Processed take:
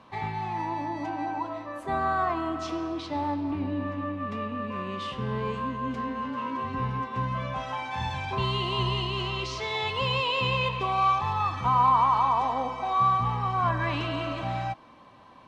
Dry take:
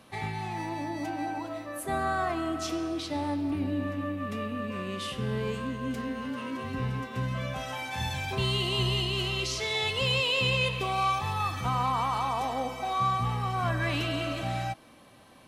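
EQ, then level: distance through air 150 m; peaking EQ 1 kHz +11.5 dB 0.4 oct; treble shelf 10 kHz +7.5 dB; 0.0 dB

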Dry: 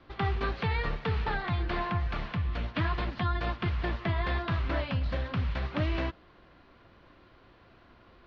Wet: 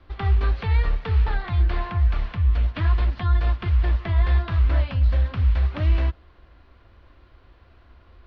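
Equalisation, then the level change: resonant low shelf 100 Hz +11 dB, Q 1.5; 0.0 dB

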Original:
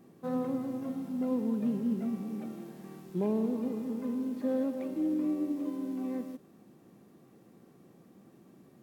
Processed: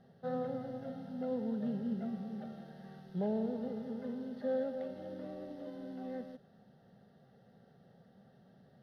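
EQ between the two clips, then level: distance through air 76 m; static phaser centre 1.6 kHz, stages 8; +1.5 dB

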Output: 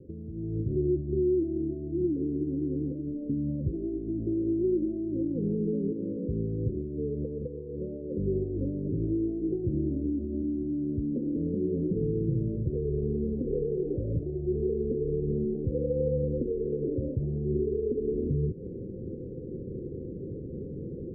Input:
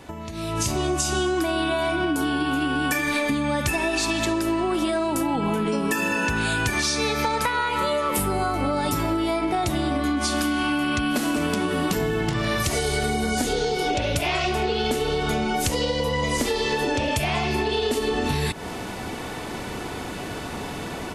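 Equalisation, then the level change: rippled Chebyshev low-pass 530 Hz, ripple 6 dB; 0.0 dB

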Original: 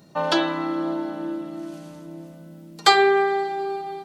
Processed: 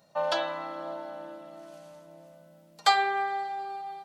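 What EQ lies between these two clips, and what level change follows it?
resonant low shelf 460 Hz -7 dB, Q 3; -8.0 dB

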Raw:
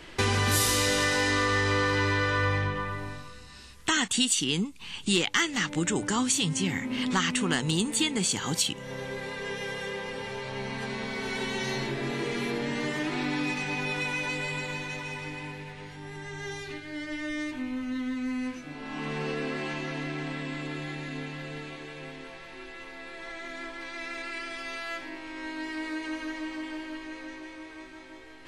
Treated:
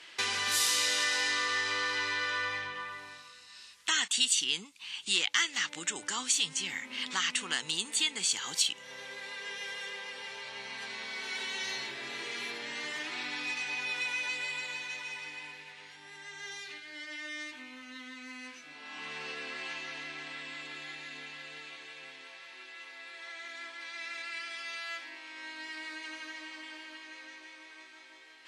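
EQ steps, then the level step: band-pass filter 4.2 kHz, Q 0.55; 0.0 dB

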